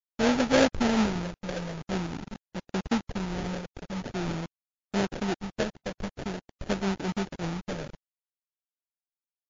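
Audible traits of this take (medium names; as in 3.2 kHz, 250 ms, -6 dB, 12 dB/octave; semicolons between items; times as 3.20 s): a quantiser's noise floor 6-bit, dither none; phasing stages 12, 0.47 Hz, lowest notch 320–1300 Hz; aliases and images of a low sample rate 1.1 kHz, jitter 20%; MP3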